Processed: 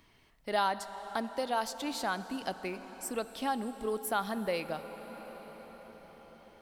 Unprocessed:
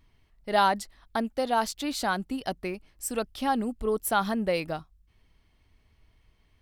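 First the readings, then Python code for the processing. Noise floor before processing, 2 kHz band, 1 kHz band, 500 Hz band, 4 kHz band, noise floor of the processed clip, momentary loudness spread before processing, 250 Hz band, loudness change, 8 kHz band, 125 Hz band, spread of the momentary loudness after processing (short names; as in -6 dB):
-66 dBFS, -5.5 dB, -6.0 dB, -5.5 dB, -5.0 dB, -64 dBFS, 11 LU, -7.0 dB, -6.0 dB, -6.0 dB, -8.5 dB, 18 LU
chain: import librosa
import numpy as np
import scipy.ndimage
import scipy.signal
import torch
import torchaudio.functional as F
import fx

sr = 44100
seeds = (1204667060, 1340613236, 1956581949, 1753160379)

y = fx.low_shelf(x, sr, hz=170.0, db=-8.5)
y = fx.rev_plate(y, sr, seeds[0], rt60_s=5.0, hf_ratio=0.65, predelay_ms=0, drr_db=12.5)
y = fx.band_squash(y, sr, depth_pct=40)
y = y * librosa.db_to_amplitude(-5.0)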